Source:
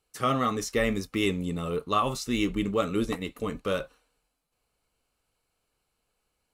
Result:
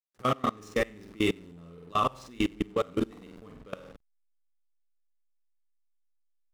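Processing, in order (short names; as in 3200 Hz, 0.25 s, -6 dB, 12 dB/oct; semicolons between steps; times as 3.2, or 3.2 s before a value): flutter echo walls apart 8.1 m, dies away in 0.66 s; backlash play -31 dBFS; level quantiser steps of 24 dB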